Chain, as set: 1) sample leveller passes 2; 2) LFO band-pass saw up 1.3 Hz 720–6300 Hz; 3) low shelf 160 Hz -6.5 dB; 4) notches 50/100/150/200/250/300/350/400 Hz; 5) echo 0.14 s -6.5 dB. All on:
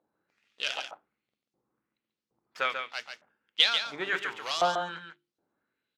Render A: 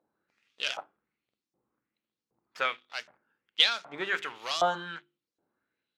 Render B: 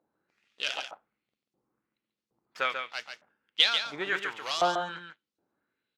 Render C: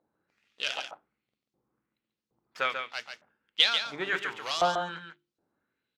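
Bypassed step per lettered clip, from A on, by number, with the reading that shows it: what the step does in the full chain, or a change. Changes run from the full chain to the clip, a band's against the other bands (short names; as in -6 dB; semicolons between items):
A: 5, momentary loudness spread change -3 LU; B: 4, 250 Hz band +2.0 dB; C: 3, 125 Hz band +3.0 dB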